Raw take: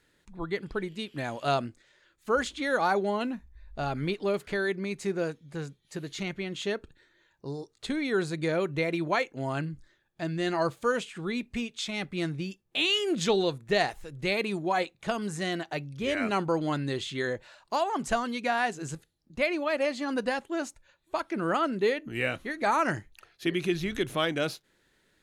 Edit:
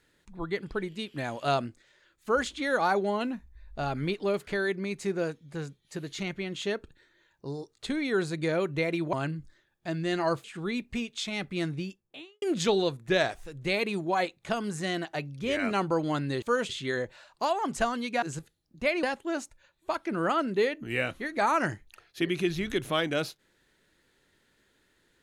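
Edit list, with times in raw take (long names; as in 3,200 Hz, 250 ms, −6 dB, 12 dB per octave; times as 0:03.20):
0:09.13–0:09.47: remove
0:10.78–0:11.05: move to 0:17.00
0:12.36–0:13.03: fade out and dull
0:13.70–0:14.02: play speed 91%
0:18.53–0:18.78: remove
0:19.59–0:20.28: remove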